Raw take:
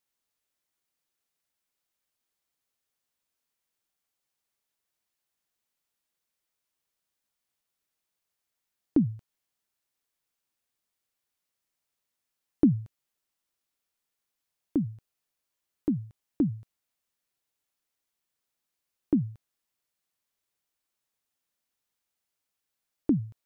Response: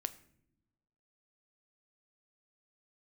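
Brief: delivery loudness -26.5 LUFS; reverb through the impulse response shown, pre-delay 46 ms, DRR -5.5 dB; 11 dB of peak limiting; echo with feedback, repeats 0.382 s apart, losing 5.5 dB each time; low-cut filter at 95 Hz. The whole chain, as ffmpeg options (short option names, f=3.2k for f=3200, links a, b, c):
-filter_complex "[0:a]highpass=95,alimiter=limit=-21.5dB:level=0:latency=1,aecho=1:1:382|764|1146|1528|1910|2292|2674:0.531|0.281|0.149|0.079|0.0419|0.0222|0.0118,asplit=2[a][b];[1:a]atrim=start_sample=2205,adelay=46[c];[b][c]afir=irnorm=-1:irlink=0,volume=6.5dB[d];[a][d]amix=inputs=2:normalize=0,volume=3dB"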